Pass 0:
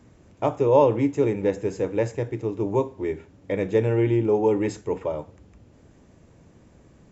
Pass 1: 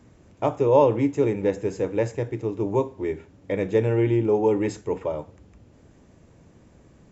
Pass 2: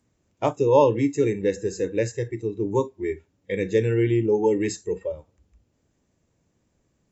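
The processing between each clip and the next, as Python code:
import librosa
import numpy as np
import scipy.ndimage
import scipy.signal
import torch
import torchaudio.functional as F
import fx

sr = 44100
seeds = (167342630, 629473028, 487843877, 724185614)

y1 = x
y2 = fx.noise_reduce_blind(y1, sr, reduce_db=17)
y2 = fx.high_shelf(y2, sr, hz=3300.0, db=10.0)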